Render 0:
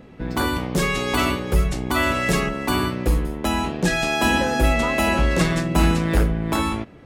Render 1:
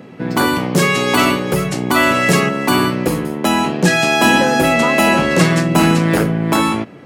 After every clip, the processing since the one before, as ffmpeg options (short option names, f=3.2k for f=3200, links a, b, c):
-af "highpass=f=120:w=0.5412,highpass=f=120:w=1.3066,bandreject=f=3.6k:w=20,acontrast=40,volume=2.5dB"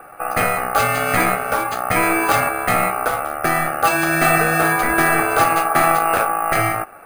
-af "aeval=exprs='val(0)*sin(2*PI*990*n/s)':c=same,afftfilt=real='re*(1-between(b*sr/4096,2900,5800))':imag='im*(1-between(b*sr/4096,2900,5800))':win_size=4096:overlap=0.75,acrusher=samples=4:mix=1:aa=0.000001"